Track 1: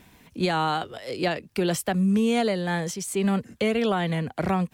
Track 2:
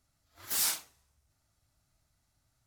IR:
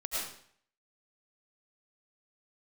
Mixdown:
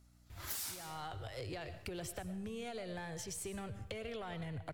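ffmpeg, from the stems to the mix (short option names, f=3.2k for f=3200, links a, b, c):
-filter_complex "[0:a]lowshelf=f=140:t=q:w=3:g=12.5,acompressor=threshold=-29dB:ratio=6,aeval=exprs='(tanh(11.2*val(0)+0.25)-tanh(0.25))/11.2':c=same,adelay=300,volume=-8.5dB,asplit=2[a][b];[b]volume=-14.5dB[c];[1:a]aeval=exprs='val(0)+0.000447*(sin(2*PI*60*n/s)+sin(2*PI*2*60*n/s)/2+sin(2*PI*3*60*n/s)/3+sin(2*PI*4*60*n/s)/4+sin(2*PI*5*60*n/s)/5)':c=same,volume=2dB,asplit=2[d][e];[e]volume=-17dB[f];[2:a]atrim=start_sample=2205[g];[c][f]amix=inputs=2:normalize=0[h];[h][g]afir=irnorm=-1:irlink=0[i];[a][d][i]amix=inputs=3:normalize=0,acompressor=threshold=-39dB:ratio=16"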